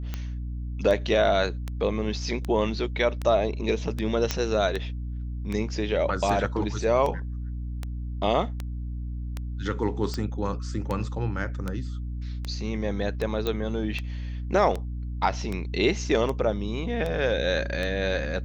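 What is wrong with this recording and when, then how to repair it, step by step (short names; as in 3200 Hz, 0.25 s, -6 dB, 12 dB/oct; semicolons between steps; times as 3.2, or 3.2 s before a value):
hum 60 Hz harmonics 5 -32 dBFS
tick 78 rpm -17 dBFS
4.31 pop -9 dBFS
13.47 pop -14 dBFS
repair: de-click; de-hum 60 Hz, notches 5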